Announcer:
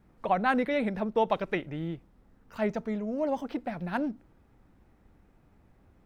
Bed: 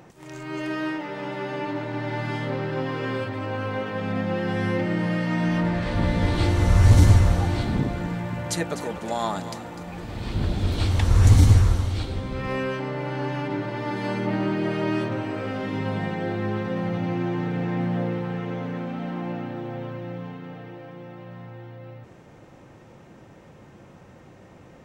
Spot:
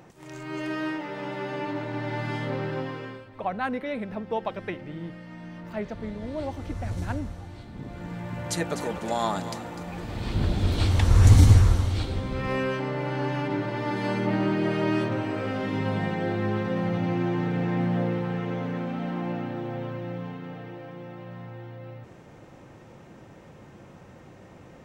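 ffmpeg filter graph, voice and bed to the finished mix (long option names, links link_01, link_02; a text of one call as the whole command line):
ffmpeg -i stem1.wav -i stem2.wav -filter_complex "[0:a]adelay=3150,volume=-3.5dB[link_01];[1:a]volume=16dB,afade=type=out:start_time=2.68:duration=0.55:silence=0.158489,afade=type=in:start_time=7.74:duration=1.06:silence=0.125893[link_02];[link_01][link_02]amix=inputs=2:normalize=0" out.wav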